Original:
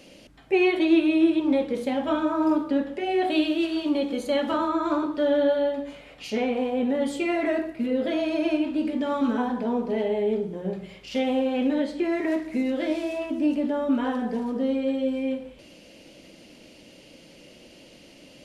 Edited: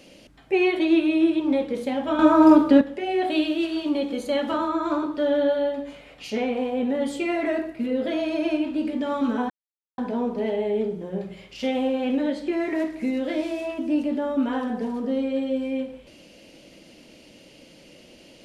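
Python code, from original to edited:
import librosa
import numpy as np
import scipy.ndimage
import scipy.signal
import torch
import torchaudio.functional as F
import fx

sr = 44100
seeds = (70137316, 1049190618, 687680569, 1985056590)

y = fx.edit(x, sr, fx.clip_gain(start_s=2.19, length_s=0.62, db=9.0),
    fx.insert_silence(at_s=9.5, length_s=0.48), tone=tone)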